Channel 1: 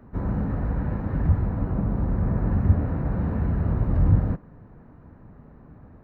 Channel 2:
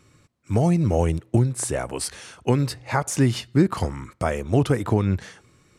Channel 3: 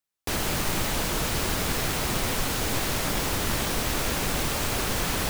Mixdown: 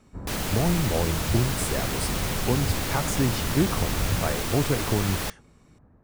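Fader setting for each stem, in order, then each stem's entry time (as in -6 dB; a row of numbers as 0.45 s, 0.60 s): -9.0 dB, -5.0 dB, -2.5 dB; 0.00 s, 0.00 s, 0.00 s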